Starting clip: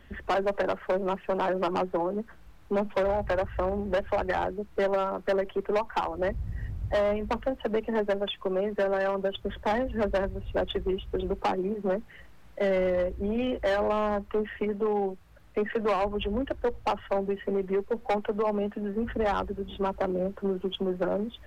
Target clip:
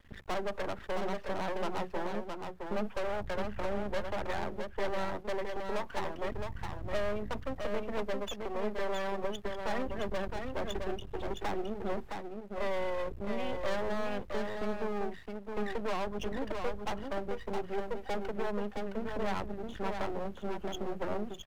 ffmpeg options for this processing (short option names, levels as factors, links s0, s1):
-af "aeval=exprs='max(val(0),0)':c=same,aecho=1:1:665:0.562,volume=0.668"